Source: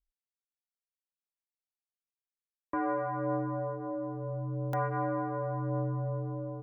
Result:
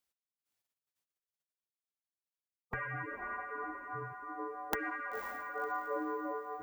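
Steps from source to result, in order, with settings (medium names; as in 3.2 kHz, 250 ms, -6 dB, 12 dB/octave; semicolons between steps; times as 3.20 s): echo that smears into a reverb 521 ms, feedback 47%, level -9 dB; spectral gate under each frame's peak -15 dB weak; trim +9.5 dB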